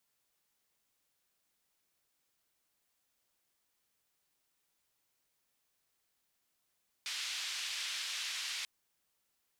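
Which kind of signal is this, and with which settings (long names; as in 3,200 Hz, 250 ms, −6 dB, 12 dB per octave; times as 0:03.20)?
band-limited noise 2,400–4,200 Hz, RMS −39.5 dBFS 1.59 s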